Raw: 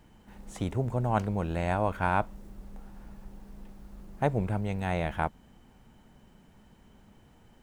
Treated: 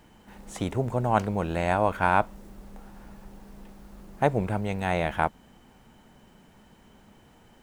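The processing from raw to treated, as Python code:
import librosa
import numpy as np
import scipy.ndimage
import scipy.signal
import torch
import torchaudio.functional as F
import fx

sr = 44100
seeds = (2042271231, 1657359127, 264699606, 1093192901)

y = fx.low_shelf(x, sr, hz=180.0, db=-7.5)
y = y * 10.0 ** (5.5 / 20.0)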